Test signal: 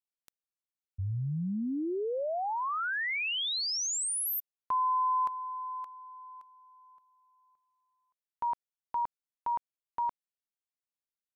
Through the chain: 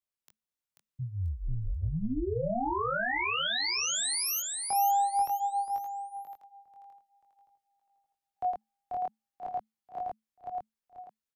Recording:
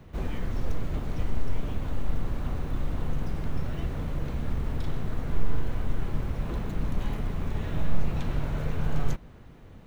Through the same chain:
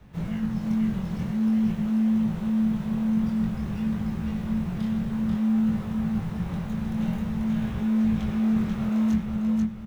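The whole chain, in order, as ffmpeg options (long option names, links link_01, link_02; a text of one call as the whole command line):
ffmpeg -i in.wav -filter_complex "[0:a]aecho=1:1:488|976|1464|1952:0.668|0.221|0.0728|0.024,flanger=delay=18.5:depth=5.1:speed=0.51,acrossover=split=360|1900[link_01][link_02][link_03];[link_01]asoftclip=type=tanh:threshold=-24dB[link_04];[link_04][link_02][link_03]amix=inputs=3:normalize=0,afreqshift=-220,volume=3dB" out.wav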